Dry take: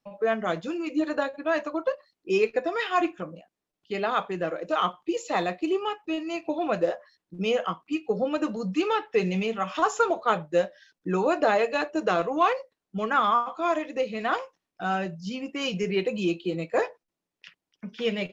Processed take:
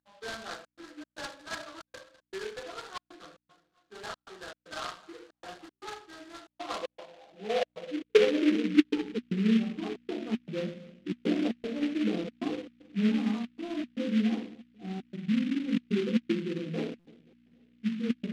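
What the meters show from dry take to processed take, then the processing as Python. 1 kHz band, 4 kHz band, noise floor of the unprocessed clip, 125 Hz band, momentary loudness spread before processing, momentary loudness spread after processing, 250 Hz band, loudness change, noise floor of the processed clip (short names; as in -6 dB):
-17.0 dB, -4.5 dB, under -85 dBFS, -2.0 dB, 9 LU, 20 LU, +1.0 dB, -4.0 dB, under -85 dBFS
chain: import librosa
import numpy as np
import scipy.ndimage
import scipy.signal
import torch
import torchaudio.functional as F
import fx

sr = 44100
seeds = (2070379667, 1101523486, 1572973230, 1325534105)

y = scipy.ndimage.median_filter(x, 25, mode='constant')
y = scipy.signal.sosfilt(scipy.signal.butter(4, 3000.0, 'lowpass', fs=sr, output='sos'), y)
y = fx.high_shelf(y, sr, hz=2100.0, db=-11.0)
y = fx.echo_feedback(y, sr, ms=266, feedback_pct=46, wet_db=-22.5)
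y = fx.room_shoebox(y, sr, seeds[0], volume_m3=340.0, walls='furnished', distance_m=3.8)
y = fx.step_gate(y, sr, bpm=116, pattern='xxxxx.xx.', floor_db=-60.0, edge_ms=4.5)
y = fx.low_shelf(y, sr, hz=450.0, db=7.5)
y = fx.add_hum(y, sr, base_hz=60, snr_db=31)
y = fx.filter_sweep_bandpass(y, sr, from_hz=1600.0, to_hz=240.0, start_s=6.28, end_s=9.12, q=6.6)
y = fx.buffer_glitch(y, sr, at_s=(16.99,), block=256, repeats=10)
y = fx.noise_mod_delay(y, sr, seeds[1], noise_hz=2300.0, depth_ms=0.083)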